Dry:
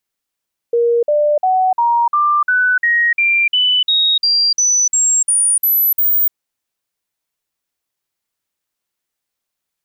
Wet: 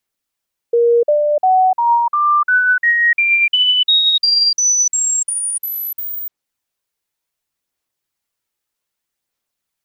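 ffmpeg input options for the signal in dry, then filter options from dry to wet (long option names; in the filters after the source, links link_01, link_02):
-f lavfi -i "aevalsrc='0.299*clip(min(mod(t,0.35),0.3-mod(t,0.35))/0.005,0,1)*sin(2*PI*471*pow(2,floor(t/0.35)/3)*mod(t,0.35))':duration=5.6:sample_rate=44100"
-filter_complex "[0:a]aphaser=in_gain=1:out_gain=1:delay=2.4:decay=0.22:speed=0.64:type=sinusoidal,acrossover=split=960|2600|7100[link_01][link_02][link_03][link_04];[link_04]acompressor=threshold=-24dB:ratio=6[link_05];[link_01][link_02][link_03][link_05]amix=inputs=4:normalize=0"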